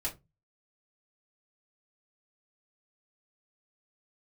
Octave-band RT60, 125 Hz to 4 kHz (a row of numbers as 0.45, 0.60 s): 0.45, 0.30, 0.25, 0.20, 0.15, 0.15 s